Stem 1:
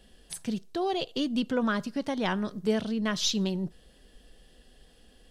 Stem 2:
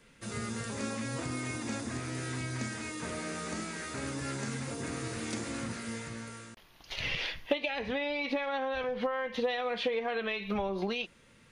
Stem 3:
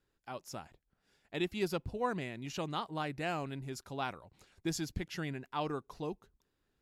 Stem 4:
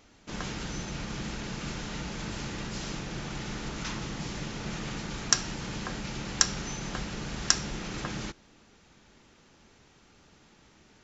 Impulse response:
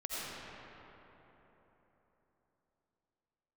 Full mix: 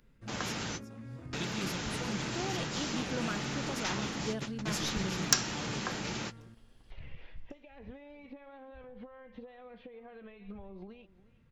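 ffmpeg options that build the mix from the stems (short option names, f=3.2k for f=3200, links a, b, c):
-filter_complex "[0:a]adelay=1600,volume=-10.5dB[a];[1:a]acompressor=threshold=-36dB:ratio=10,aemphasis=mode=reproduction:type=riaa,acrossover=split=2900[b][c];[c]acompressor=threshold=-59dB:ratio=4:attack=1:release=60[d];[b][d]amix=inputs=2:normalize=0,volume=-13dB,asplit=2[e][f];[f]volume=-18.5dB[g];[2:a]bandreject=f=50:t=h:w=6,bandreject=f=100:t=h:w=6,bandreject=f=150:t=h:w=6,acrossover=split=220|3000[h][i][j];[i]acompressor=threshold=-53dB:ratio=3[k];[h][k][j]amix=inputs=3:normalize=0,volume=1.5dB,asplit=3[l][m][n];[m]volume=-16dB[o];[3:a]highpass=f=260:p=1,asoftclip=type=tanh:threshold=-11.5dB,volume=1.5dB[p];[n]apad=whole_len=486674[q];[p][q]sidechaingate=range=-52dB:threshold=-60dB:ratio=16:detection=peak[r];[g][o]amix=inputs=2:normalize=0,aecho=0:1:361:1[s];[a][e][l][r][s]amix=inputs=5:normalize=0"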